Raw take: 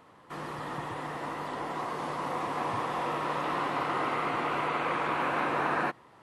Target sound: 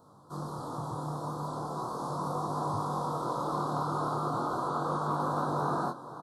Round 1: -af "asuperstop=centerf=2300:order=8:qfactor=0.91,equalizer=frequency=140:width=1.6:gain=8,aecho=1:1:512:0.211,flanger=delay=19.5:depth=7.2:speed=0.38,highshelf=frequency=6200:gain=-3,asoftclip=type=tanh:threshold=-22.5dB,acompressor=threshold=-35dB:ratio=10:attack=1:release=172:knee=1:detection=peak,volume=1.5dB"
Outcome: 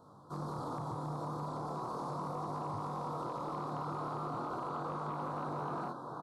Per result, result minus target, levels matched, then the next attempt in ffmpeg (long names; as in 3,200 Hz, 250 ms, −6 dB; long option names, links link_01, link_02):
soft clipping: distortion +15 dB; downward compressor: peak gain reduction +8.5 dB; 8,000 Hz band −4.0 dB
-af "asuperstop=centerf=2300:order=8:qfactor=0.91,equalizer=frequency=140:width=1.6:gain=8,aecho=1:1:512:0.211,flanger=delay=19.5:depth=7.2:speed=0.38,highshelf=frequency=6200:gain=-3,asoftclip=type=tanh:threshold=-14dB,acompressor=threshold=-35dB:ratio=10:attack=1:release=172:knee=1:detection=peak,volume=1.5dB"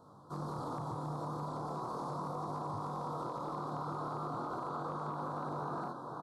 downward compressor: peak gain reduction +10.5 dB; 8,000 Hz band −4.0 dB
-af "asuperstop=centerf=2300:order=8:qfactor=0.91,equalizer=frequency=140:width=1.6:gain=8,aecho=1:1:512:0.211,flanger=delay=19.5:depth=7.2:speed=0.38,highshelf=frequency=6200:gain=-3,asoftclip=type=tanh:threshold=-14dB,volume=1.5dB"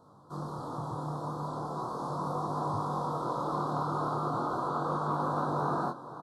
8,000 Hz band −5.5 dB
-af "asuperstop=centerf=2300:order=8:qfactor=0.91,equalizer=frequency=140:width=1.6:gain=8,aecho=1:1:512:0.211,flanger=delay=19.5:depth=7.2:speed=0.38,highshelf=frequency=6200:gain=6,asoftclip=type=tanh:threshold=-14dB,volume=1.5dB"